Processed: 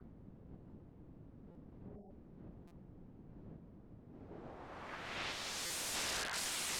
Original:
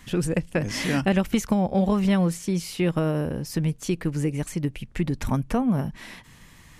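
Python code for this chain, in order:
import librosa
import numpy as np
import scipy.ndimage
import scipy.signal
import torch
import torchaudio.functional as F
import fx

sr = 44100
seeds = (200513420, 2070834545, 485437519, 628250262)

y = fx.halfwave_hold(x, sr)
y = fx.bass_treble(y, sr, bass_db=-7, treble_db=-11)
y = fx.spec_erase(y, sr, start_s=1.61, length_s=0.51, low_hz=1000.0, high_hz=5100.0)
y = fx.curve_eq(y, sr, hz=(110.0, 160.0, 470.0, 1000.0, 1500.0, 4300.0, 6600.0, 13000.0), db=(0, -28, -13, -15, 0, 12, -11, -9))
y = y + 10.0 ** (-11.5 / 20.0) * np.pad(y, (int(73 * sr / 1000.0), 0))[:len(y)]
y = fx.room_shoebox(y, sr, seeds[0], volume_m3=51.0, walls='mixed', distance_m=2.0)
y = fx.formant_shift(y, sr, semitones=-3)
y = fx.wah_lfo(y, sr, hz=1.1, low_hz=440.0, high_hz=3300.0, q=4.7)
y = (np.mod(10.0 ** (49.0 / 20.0) * y + 1.0, 2.0) - 1.0) / 10.0 ** (49.0 / 20.0)
y = fx.filter_sweep_lowpass(y, sr, from_hz=230.0, to_hz=8900.0, start_s=4.05, end_s=5.72, q=0.98)
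y = fx.buffer_glitch(y, sr, at_s=(1.51, 2.67, 5.66), block=256, repeats=6)
y = y * librosa.db_to_amplitude(15.0)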